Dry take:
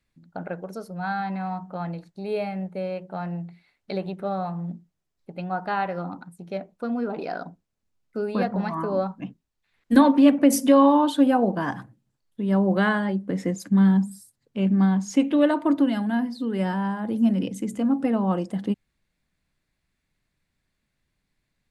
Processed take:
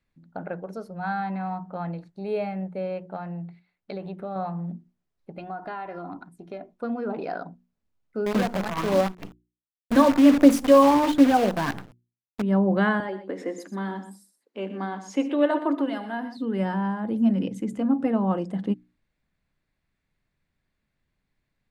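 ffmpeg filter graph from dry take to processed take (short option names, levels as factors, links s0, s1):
-filter_complex "[0:a]asettb=1/sr,asplit=3[s0][s1][s2];[s0]atrim=end=3.164[s3];[s1]atrim=start=3.16:end=4.36,asetpts=PTS-STARTPTS,afade=t=in:d=0.004:c=qsin,afade=t=out:st=1.196:d=0.004:c=qsin,agate=range=0.447:threshold=0.00158:ratio=16:release=100:detection=peak,acompressor=threshold=0.0316:ratio=3:attack=3.2:release=140:knee=1:detection=peak[s4];[s2]atrim=start=4.356[s5];[s3][s4]acrossfade=d=0.004:c1=hsin:c2=qsin[s6];[s6][s5]acrossfade=d=0.004:c1=qsin:c2=hsin,asettb=1/sr,asplit=3[s7][s8][s9];[s7]atrim=end=5.384[s10];[s8]atrim=start=5.38:end=6.75,asetpts=PTS-STARTPTS,afade=t=in:d=0.004:c=qsin,afade=t=out:st=1.366:d=0.004:c=qsin,aecho=1:1:2.9:0.48,atrim=end_sample=60417,acompressor=threshold=0.0282:ratio=5:attack=3.2:release=140:knee=1:detection=peak[s11];[s9]atrim=start=6.746[s12];[s10][s11]acrossfade=d=0.004:c1=hsin:c2=qsin[s13];[s13][s12]acrossfade=d=0.004:c1=qsin:c2=hsin,asettb=1/sr,asplit=3[s14][s15][s16];[s14]atrim=end=8.264[s17];[s15]atrim=start=8.26:end=12.42,asetpts=PTS-STARTPTS,afade=t=in:d=0.004:c=qsin,afade=t=out:st=4.156:d=0.004:c=qsin,aphaser=in_gain=1:out_gain=1:delay=1.8:decay=0.36:speed=1.4:type=sinusoidal,acrusher=bits=5:dc=4:mix=0:aa=0.000001[s18];[s16]atrim=start=12.416[s19];[s17][s18]acrossfade=d=0.004:c1=hsin:c2=qsin[s20];[s20][s19]acrossfade=d=0.004:c1=qsin:c2=hsin,asettb=1/sr,asplit=3[s21][s22][s23];[s21]atrim=end=13.004[s24];[s22]atrim=start=13:end=16.37,asetpts=PTS-STARTPTS,afade=t=in:d=0.004:c=qsin,afade=t=out:st=3.366:d=0.004:c=qsin,highpass=f=300:w=0.5412,highpass=f=300:w=1.3066,aecho=1:1:76|122:0.141|0.237,atrim=end_sample=148617[s25];[s23]atrim=start=16.366[s26];[s24][s25]acrossfade=d=0.004:c1=hsin:c2=qsin[s27];[s27][s26]acrossfade=d=0.004:c1=qsin:c2=hsin,highshelf=f=4300:g=-11,bandreject=f=60:t=h:w=6,bandreject=f=120:t=h:w=6,bandreject=f=180:t=h:w=6,bandreject=f=240:t=h:w=6,bandreject=f=300:t=h:w=6,bandreject=f=360:t=h:w=6"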